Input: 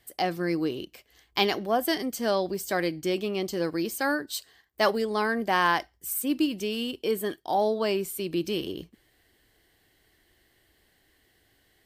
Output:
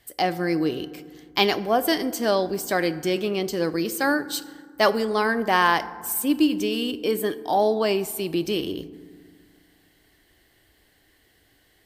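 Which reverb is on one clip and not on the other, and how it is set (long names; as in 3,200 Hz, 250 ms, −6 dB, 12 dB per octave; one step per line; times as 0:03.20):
feedback delay network reverb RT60 1.8 s, low-frequency decay 1.35×, high-frequency decay 0.4×, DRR 13.5 dB
level +4 dB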